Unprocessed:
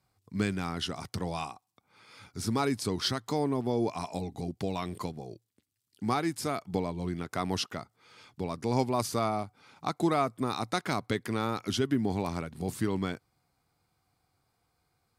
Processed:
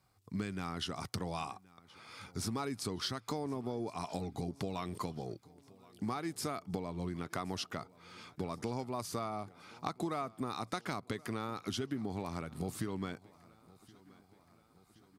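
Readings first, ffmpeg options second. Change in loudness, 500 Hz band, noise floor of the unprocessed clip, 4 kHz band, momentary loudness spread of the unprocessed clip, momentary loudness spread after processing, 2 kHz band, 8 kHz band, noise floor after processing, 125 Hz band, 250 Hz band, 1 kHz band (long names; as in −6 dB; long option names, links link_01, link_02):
−7.5 dB, −8.5 dB, −78 dBFS, −6.5 dB, 9 LU, 8 LU, −7.0 dB, −5.0 dB, −66 dBFS, −7.0 dB, −7.5 dB, −7.0 dB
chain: -filter_complex "[0:a]equalizer=frequency=1200:width=5.5:gain=3.5,acompressor=threshold=-36dB:ratio=6,asplit=2[link_01][link_02];[link_02]aecho=0:1:1073|2146|3219|4292:0.0708|0.0425|0.0255|0.0153[link_03];[link_01][link_03]amix=inputs=2:normalize=0,volume=1.5dB"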